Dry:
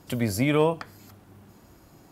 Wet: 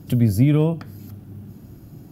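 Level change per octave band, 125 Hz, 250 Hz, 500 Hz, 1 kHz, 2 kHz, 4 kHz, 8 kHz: +11.5 dB, +7.0 dB, −1.5 dB, −7.5 dB, −6.5 dB, −4.0 dB, can't be measured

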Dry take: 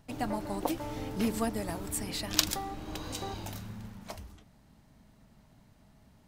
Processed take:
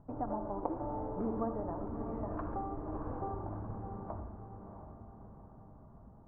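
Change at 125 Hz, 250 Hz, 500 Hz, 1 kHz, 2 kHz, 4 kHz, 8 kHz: −1.5 dB, −4.0 dB, −1.0 dB, −1.0 dB, −18.0 dB, below −40 dB, below −40 dB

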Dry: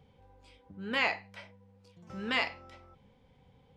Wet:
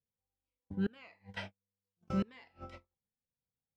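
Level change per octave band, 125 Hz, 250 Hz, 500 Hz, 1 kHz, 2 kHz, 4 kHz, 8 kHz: +7.5 dB, +3.5 dB, −5.0 dB, −12.0 dB, −16.5 dB, −16.0 dB, can't be measured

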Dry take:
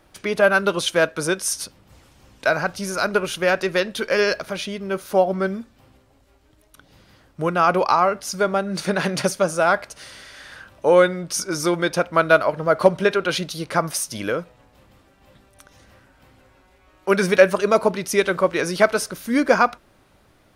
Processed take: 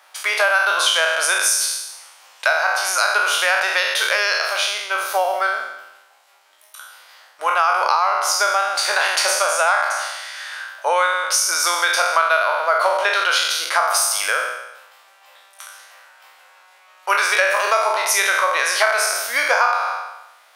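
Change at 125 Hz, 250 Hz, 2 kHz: below −40 dB, below −20 dB, +6.5 dB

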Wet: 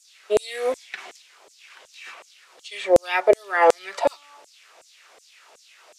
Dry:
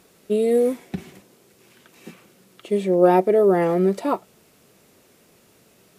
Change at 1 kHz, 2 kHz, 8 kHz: +0.5 dB, +9.0 dB, can't be measured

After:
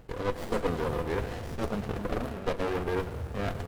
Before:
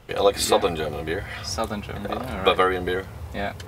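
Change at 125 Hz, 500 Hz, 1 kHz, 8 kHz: −1.5, −8.5, −10.5, −18.5 decibels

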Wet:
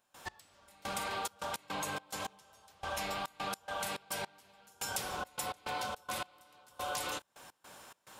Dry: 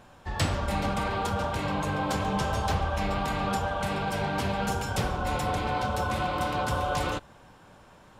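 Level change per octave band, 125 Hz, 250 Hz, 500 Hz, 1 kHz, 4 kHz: −23.0, −18.0, −12.5, −11.0, −5.5 decibels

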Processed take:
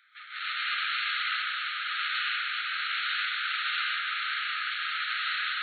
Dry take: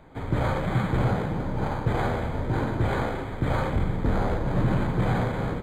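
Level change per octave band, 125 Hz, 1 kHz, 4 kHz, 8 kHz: below −40 dB, −3.5 dB, +15.0 dB, can't be measured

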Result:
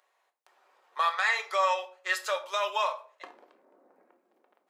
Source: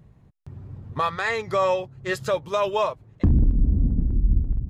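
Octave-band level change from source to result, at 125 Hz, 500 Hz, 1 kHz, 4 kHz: below −40 dB, −9.5 dB, −2.0 dB, +1.0 dB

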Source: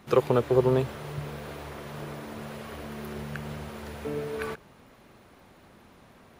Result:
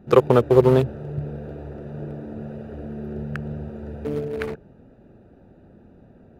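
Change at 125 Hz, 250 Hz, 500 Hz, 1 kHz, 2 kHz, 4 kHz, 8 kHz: +7.5 dB, +7.0 dB, +7.0 dB, +5.5 dB, +2.5 dB, +1.5 dB, can't be measured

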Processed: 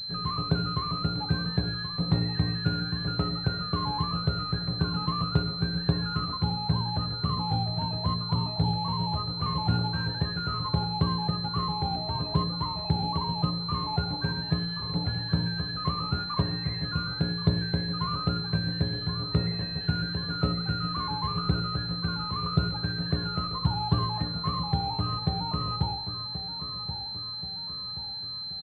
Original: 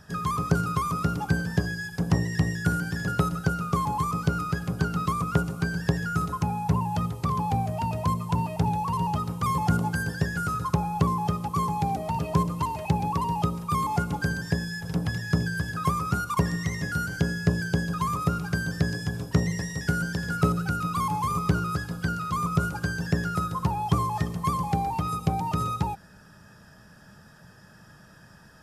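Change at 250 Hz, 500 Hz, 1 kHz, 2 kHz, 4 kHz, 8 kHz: −2.5 dB, −4.0 dB, −5.0 dB, −7.0 dB, +13.0 dB, below −20 dB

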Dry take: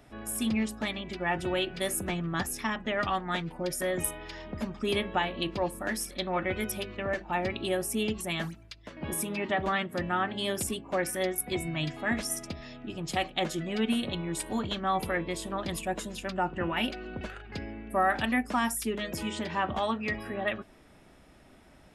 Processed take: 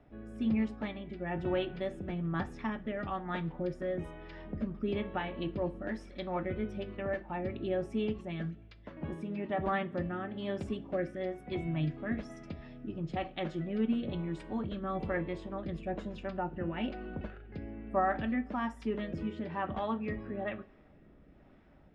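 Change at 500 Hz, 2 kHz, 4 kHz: −3.5, −9.5, −14.5 decibels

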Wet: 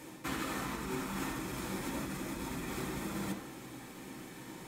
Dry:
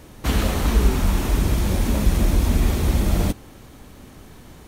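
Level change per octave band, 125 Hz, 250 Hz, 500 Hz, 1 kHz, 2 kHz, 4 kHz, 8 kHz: −23.0, −13.5, −14.0, −10.0, −9.0, −13.5, −12.0 decibels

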